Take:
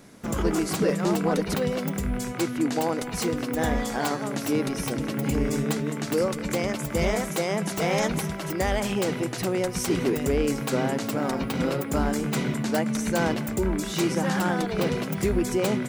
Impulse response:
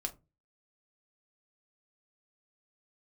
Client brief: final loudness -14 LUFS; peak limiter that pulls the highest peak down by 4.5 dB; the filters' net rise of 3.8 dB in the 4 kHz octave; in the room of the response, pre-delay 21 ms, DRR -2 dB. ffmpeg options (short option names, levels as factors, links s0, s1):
-filter_complex "[0:a]equalizer=f=4000:t=o:g=5,alimiter=limit=0.126:level=0:latency=1,asplit=2[s0][s1];[1:a]atrim=start_sample=2205,adelay=21[s2];[s1][s2]afir=irnorm=-1:irlink=0,volume=1.26[s3];[s0][s3]amix=inputs=2:normalize=0,volume=2.82"